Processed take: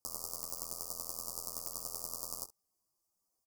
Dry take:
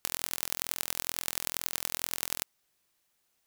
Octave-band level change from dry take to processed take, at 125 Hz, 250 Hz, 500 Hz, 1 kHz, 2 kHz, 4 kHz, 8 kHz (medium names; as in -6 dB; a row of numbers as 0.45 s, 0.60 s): -7.0 dB, -8.0 dB, -5.0 dB, -7.0 dB, under -35 dB, -11.5 dB, -6.0 dB